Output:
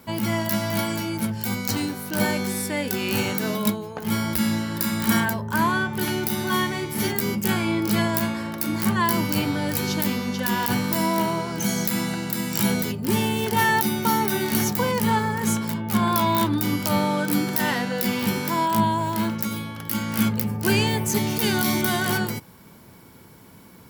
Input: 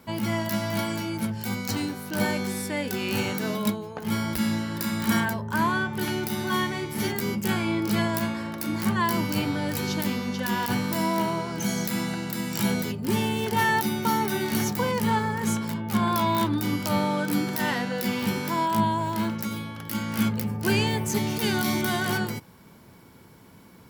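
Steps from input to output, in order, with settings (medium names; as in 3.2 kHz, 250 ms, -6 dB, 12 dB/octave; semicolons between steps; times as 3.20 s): treble shelf 9.3 kHz +6.5 dB; trim +2.5 dB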